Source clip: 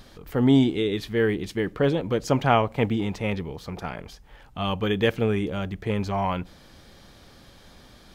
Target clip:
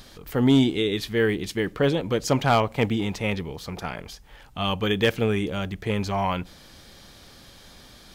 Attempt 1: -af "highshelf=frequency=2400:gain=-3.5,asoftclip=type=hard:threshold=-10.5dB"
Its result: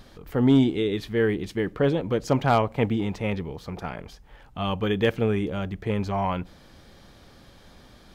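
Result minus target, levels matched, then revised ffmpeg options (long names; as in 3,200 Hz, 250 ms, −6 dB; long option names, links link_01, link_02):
4,000 Hz band −6.0 dB
-af "highshelf=frequency=2400:gain=7,asoftclip=type=hard:threshold=-10.5dB"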